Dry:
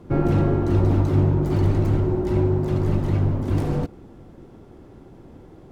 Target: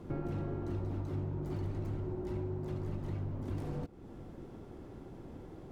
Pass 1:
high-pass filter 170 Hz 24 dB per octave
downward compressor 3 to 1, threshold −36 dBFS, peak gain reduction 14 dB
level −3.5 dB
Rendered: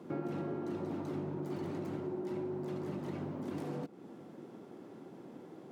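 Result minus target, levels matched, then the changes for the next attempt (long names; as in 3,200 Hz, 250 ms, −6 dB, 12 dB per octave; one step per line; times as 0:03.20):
125 Hz band −7.5 dB
remove: high-pass filter 170 Hz 24 dB per octave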